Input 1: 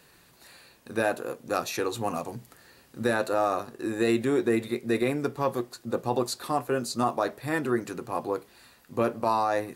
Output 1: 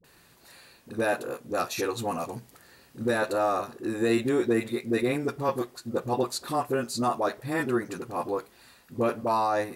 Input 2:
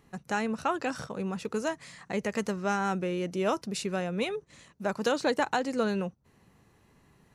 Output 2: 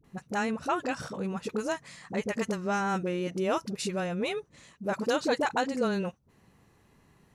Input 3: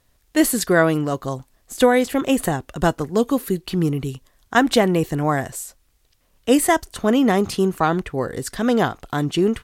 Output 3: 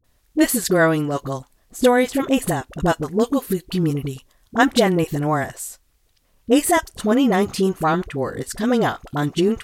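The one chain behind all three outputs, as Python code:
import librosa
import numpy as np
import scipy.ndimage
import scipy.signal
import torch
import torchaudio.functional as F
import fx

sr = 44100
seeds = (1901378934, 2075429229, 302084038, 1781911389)

y = fx.dispersion(x, sr, late='highs', ms=43.0, hz=550.0)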